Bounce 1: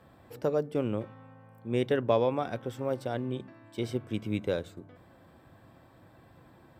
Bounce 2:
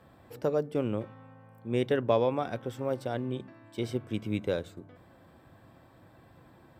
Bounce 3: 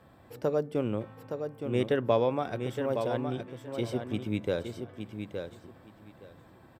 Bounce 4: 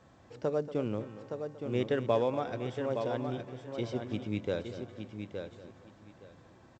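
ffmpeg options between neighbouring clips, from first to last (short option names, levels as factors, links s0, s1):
-af anull
-af "aecho=1:1:867|1734|2601:0.447|0.0804|0.0145"
-af "aecho=1:1:234|468|702:0.2|0.0678|0.0231,volume=0.708" -ar 16000 -c:a pcm_alaw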